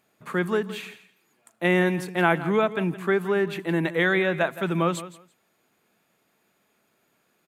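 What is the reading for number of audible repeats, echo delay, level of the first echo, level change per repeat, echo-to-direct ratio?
2, 167 ms, -15.0 dB, -15.0 dB, -15.0 dB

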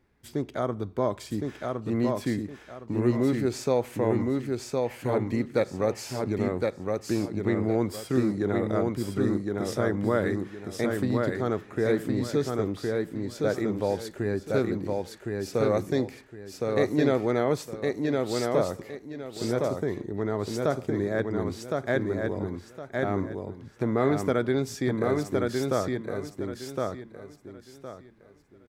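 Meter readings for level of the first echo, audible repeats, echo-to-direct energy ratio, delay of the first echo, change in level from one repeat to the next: -3.0 dB, 3, -2.5 dB, 1063 ms, -11.5 dB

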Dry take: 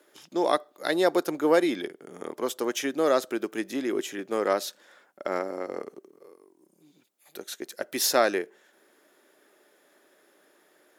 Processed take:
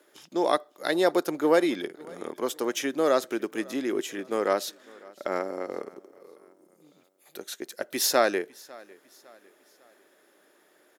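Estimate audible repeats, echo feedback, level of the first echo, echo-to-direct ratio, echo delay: 2, 42%, -23.5 dB, -22.5 dB, 552 ms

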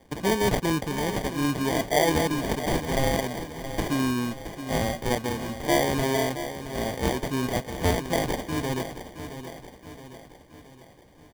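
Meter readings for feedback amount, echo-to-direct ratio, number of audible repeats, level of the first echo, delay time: 51%, -9.5 dB, 5, -11.0 dB, 671 ms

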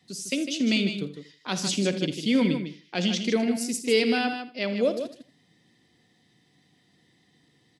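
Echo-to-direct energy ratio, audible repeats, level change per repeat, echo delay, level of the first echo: -7.0 dB, 3, no regular repeats, 55 ms, -14.5 dB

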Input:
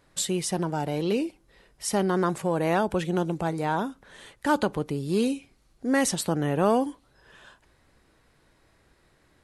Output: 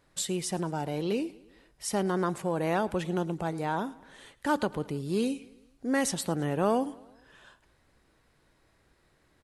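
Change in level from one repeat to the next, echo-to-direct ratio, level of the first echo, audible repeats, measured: -5.0 dB, -20.5 dB, -22.0 dB, 3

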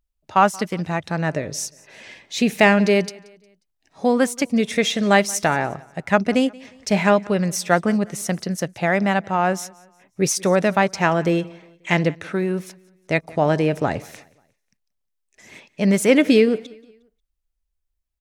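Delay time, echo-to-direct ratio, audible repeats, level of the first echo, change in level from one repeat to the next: 179 ms, -23.0 dB, 2, -23.5 dB, -8.0 dB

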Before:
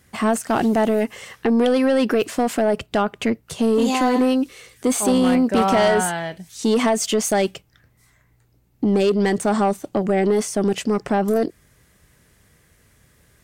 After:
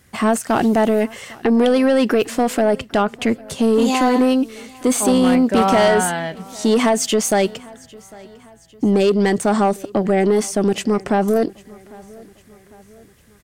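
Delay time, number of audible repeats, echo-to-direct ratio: 801 ms, 2, -22.5 dB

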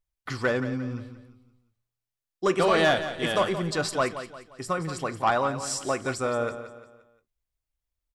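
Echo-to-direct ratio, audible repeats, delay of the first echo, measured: -10.5 dB, 3, 175 ms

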